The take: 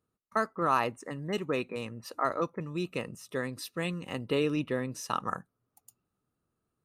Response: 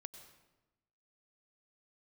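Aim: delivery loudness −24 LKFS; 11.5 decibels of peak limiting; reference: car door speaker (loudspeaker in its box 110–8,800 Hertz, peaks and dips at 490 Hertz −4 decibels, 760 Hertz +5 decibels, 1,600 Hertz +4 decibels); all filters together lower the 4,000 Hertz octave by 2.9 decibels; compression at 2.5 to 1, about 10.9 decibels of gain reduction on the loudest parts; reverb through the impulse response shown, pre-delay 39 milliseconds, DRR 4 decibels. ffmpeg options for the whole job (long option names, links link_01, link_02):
-filter_complex "[0:a]equalizer=frequency=4000:width_type=o:gain=-4.5,acompressor=threshold=-40dB:ratio=2.5,alimiter=level_in=10dB:limit=-24dB:level=0:latency=1,volume=-10dB,asplit=2[link_01][link_02];[1:a]atrim=start_sample=2205,adelay=39[link_03];[link_02][link_03]afir=irnorm=-1:irlink=0,volume=1.5dB[link_04];[link_01][link_04]amix=inputs=2:normalize=0,highpass=110,equalizer=frequency=490:width_type=q:width=4:gain=-4,equalizer=frequency=760:width_type=q:width=4:gain=5,equalizer=frequency=1600:width_type=q:width=4:gain=4,lowpass=frequency=8800:width=0.5412,lowpass=frequency=8800:width=1.3066,volume=19.5dB"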